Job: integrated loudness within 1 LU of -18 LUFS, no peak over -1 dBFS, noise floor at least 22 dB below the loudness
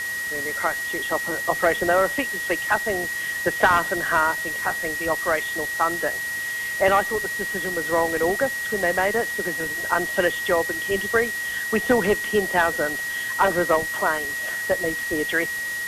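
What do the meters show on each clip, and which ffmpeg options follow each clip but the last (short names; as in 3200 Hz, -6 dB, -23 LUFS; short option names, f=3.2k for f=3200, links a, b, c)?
steady tone 1900 Hz; tone level -26 dBFS; noise floor -29 dBFS; noise floor target -45 dBFS; loudness -22.5 LUFS; peak -4.5 dBFS; loudness target -18.0 LUFS
-> -af "bandreject=f=1.9k:w=30"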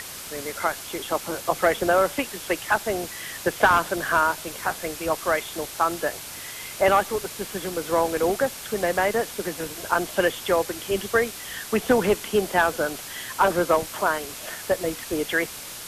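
steady tone none; noise floor -38 dBFS; noise floor target -47 dBFS
-> -af "afftdn=nr=9:nf=-38"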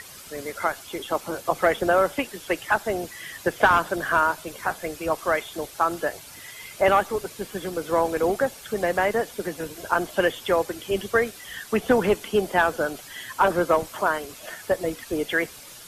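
noise floor -44 dBFS; noise floor target -47 dBFS
-> -af "afftdn=nr=6:nf=-44"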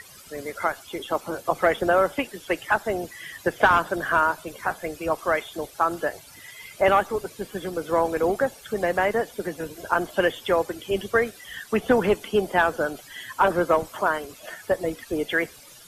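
noise floor -48 dBFS; loudness -24.5 LUFS; peak -5.5 dBFS; loudness target -18.0 LUFS
-> -af "volume=6.5dB,alimiter=limit=-1dB:level=0:latency=1"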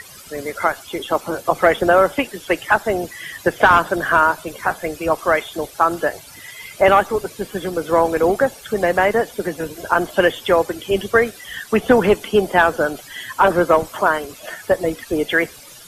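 loudness -18.5 LUFS; peak -1.0 dBFS; noise floor -41 dBFS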